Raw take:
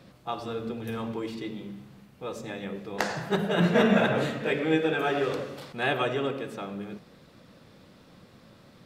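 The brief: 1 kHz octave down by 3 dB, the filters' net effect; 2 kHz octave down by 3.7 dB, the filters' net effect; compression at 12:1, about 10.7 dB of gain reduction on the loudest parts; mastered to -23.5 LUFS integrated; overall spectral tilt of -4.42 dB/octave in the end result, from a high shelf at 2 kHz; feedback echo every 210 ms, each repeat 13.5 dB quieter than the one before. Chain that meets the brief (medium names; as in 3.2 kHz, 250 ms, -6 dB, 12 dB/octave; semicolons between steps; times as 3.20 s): peaking EQ 1 kHz -4 dB; treble shelf 2 kHz +5 dB; peaking EQ 2 kHz -6.5 dB; compression 12:1, threshold -28 dBFS; feedback delay 210 ms, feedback 21%, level -13.5 dB; trim +11 dB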